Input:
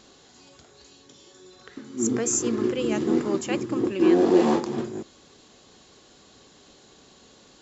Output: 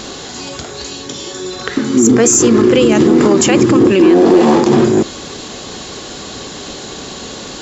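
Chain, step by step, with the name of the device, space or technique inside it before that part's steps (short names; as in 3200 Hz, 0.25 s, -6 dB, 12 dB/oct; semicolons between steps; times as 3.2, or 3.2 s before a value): loud club master (compressor 2:1, threshold -24 dBFS, peak gain reduction 6.5 dB; hard clip -17 dBFS, distortion -26 dB; maximiser +26.5 dB); gain -1 dB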